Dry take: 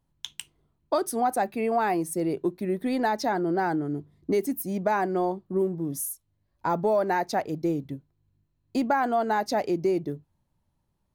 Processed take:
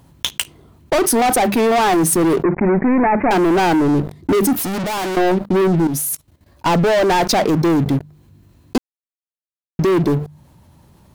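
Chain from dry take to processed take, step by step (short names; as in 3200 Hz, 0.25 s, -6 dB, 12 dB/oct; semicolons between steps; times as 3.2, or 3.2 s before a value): HPF 63 Hz 12 dB/oct; notches 50/100/150/200 Hz; sample leveller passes 5; 2.43–3.31 steep low-pass 2400 Hz 96 dB/oct; 5.87–6.66 level quantiser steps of 15 dB; low shelf 320 Hz +3 dB; 4.53–5.17 hard clip -29.5 dBFS, distortion -12 dB; 8.78–9.79 mute; fast leveller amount 50%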